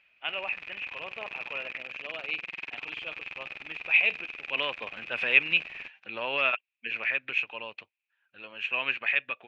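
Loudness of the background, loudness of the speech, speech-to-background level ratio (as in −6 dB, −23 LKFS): −39.0 LKFS, −28.0 LKFS, 11.0 dB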